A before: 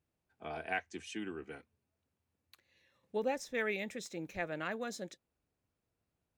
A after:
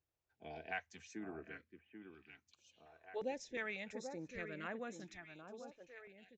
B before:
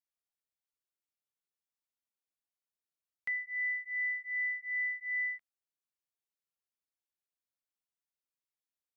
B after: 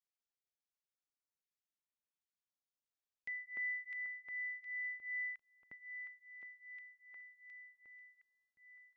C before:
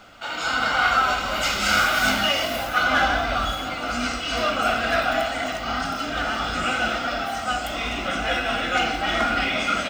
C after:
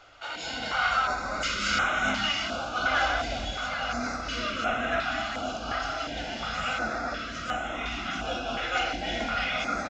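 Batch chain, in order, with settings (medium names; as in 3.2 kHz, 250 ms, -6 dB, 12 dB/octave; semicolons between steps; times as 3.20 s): echo whose repeats swap between lows and highs 786 ms, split 2.2 kHz, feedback 67%, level -8 dB; resampled via 16 kHz; step-sequenced notch 2.8 Hz 210–4700 Hz; trim -5.5 dB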